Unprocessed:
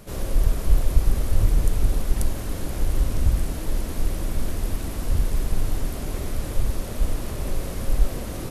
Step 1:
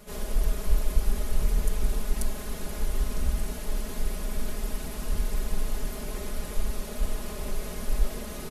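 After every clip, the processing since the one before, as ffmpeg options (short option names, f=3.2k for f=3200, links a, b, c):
-af "lowshelf=f=390:g=-5,aecho=1:1:4.8:0.88,volume=-4.5dB"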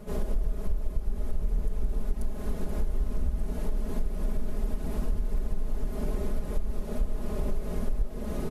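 -af "tiltshelf=f=1.2k:g=8,acompressor=threshold=-23dB:ratio=5"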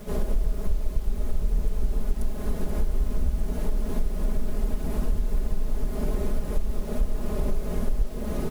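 -af "acrusher=bits=8:mix=0:aa=0.000001,volume=3.5dB"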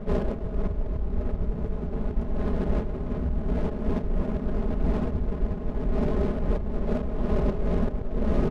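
-af "afftfilt=real='re*lt(hypot(re,im),0.891)':imag='im*lt(hypot(re,im),0.891)':win_size=1024:overlap=0.75,adynamicsmooth=sensitivity=7:basefreq=660,volume=5.5dB"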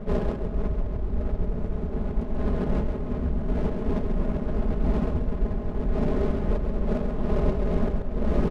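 -af "aecho=1:1:135:0.501"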